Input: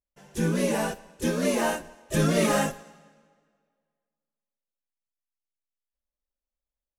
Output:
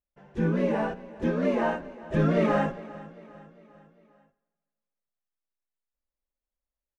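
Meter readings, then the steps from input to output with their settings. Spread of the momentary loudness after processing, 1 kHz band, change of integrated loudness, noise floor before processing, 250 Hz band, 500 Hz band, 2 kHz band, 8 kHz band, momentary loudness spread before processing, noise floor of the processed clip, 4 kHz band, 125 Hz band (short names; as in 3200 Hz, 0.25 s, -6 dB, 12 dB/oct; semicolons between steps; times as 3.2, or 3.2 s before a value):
17 LU, -0.5 dB, -0.5 dB, under -85 dBFS, 0.0 dB, 0.0 dB, -3.0 dB, under -20 dB, 11 LU, under -85 dBFS, -11.5 dB, 0.0 dB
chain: LPF 1800 Hz 12 dB/oct; on a send: feedback echo 0.401 s, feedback 50%, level -19 dB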